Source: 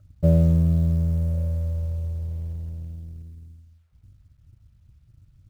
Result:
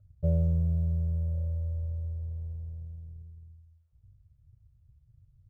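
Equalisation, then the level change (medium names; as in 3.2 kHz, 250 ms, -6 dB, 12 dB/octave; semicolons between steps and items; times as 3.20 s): FFT filter 140 Hz 0 dB, 250 Hz -20 dB, 430 Hz -2 dB, 1.7 kHz -14 dB; -6.0 dB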